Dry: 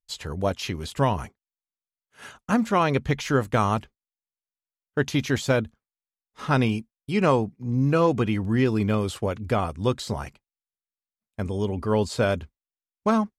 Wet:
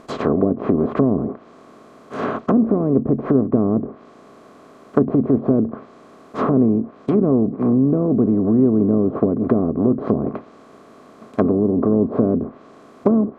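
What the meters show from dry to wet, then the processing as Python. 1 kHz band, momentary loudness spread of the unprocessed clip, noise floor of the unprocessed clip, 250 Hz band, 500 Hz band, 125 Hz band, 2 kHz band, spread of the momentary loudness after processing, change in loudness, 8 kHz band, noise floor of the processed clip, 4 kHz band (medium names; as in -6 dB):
-2.0 dB, 11 LU, under -85 dBFS, +10.0 dB, +6.0 dB, +2.0 dB, no reading, 10 LU, +6.5 dB, under -15 dB, -46 dBFS, under -10 dB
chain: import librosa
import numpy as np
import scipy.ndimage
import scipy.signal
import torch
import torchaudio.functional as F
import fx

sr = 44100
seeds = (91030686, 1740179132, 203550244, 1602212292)

y = fx.bin_compress(x, sr, power=0.4)
y = fx.env_lowpass_down(y, sr, base_hz=340.0, full_db=-15.0)
y = fx.small_body(y, sr, hz=(270.0, 400.0, 640.0, 1100.0), ring_ms=20, db=15)
y = y * 10.0 ** (-9.0 / 20.0)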